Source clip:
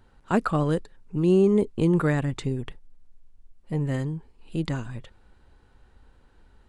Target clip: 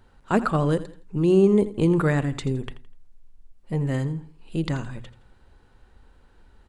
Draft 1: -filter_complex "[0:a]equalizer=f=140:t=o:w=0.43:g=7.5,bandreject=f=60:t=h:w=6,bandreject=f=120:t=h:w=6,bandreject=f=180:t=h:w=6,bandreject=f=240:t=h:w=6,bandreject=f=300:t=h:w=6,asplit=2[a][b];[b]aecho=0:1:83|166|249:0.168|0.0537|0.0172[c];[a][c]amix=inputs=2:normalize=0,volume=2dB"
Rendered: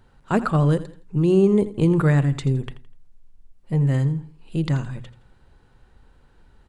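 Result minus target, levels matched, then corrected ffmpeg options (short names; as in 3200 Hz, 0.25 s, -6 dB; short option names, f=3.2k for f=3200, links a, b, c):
125 Hz band +3.0 dB
-filter_complex "[0:a]bandreject=f=60:t=h:w=6,bandreject=f=120:t=h:w=6,bandreject=f=180:t=h:w=6,bandreject=f=240:t=h:w=6,bandreject=f=300:t=h:w=6,asplit=2[a][b];[b]aecho=0:1:83|166|249:0.168|0.0537|0.0172[c];[a][c]amix=inputs=2:normalize=0,volume=2dB"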